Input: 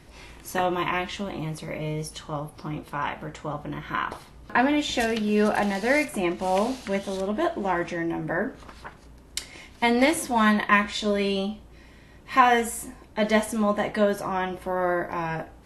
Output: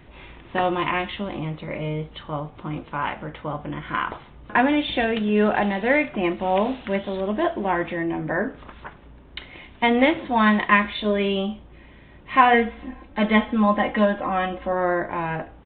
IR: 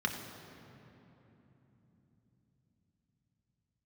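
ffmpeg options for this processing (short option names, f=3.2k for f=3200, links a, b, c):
-filter_complex "[0:a]asettb=1/sr,asplit=3[a][b][c];[a]atrim=end=12.534[d];[b]atrim=start=12.53:end=14.73,asetpts=PTS-STARTPTS,afade=t=in:d=0.004:c=qsin,afade=t=out:st=2.196:d=0.004:c=qsin,aecho=1:1:3.8:0.7,atrim=end_sample=97020[e];[c]atrim=start=14.726[f];[d][e]acrossfade=d=0.004:c1=hsin:c2=qsin[g];[g][f]acrossfade=d=0.004:c1=qsin:c2=hsin,aresample=8000,aresample=44100,volume=2.5dB"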